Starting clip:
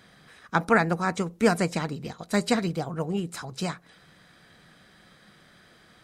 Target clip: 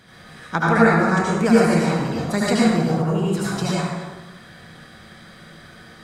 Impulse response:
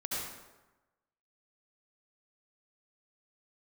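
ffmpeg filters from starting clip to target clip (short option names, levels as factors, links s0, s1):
-filter_complex "[1:a]atrim=start_sample=2205,asetrate=42336,aresample=44100[s0];[0:a][s0]afir=irnorm=-1:irlink=0,asplit=2[s1][s2];[s2]acompressor=threshold=0.0355:ratio=6,volume=1.41[s3];[s1][s3]amix=inputs=2:normalize=0,lowshelf=f=160:g=3.5,volume=0.891"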